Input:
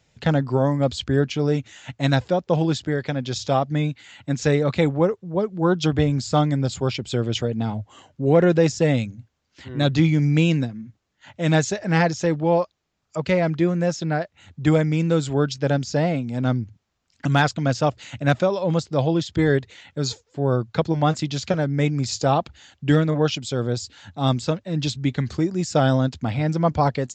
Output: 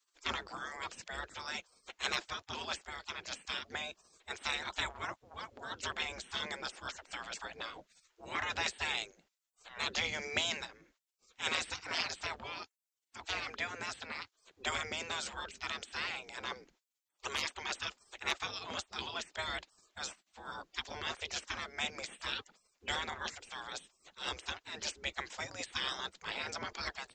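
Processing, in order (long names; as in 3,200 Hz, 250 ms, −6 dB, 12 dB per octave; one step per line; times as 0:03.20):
gate on every frequency bin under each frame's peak −25 dB weak
level +1 dB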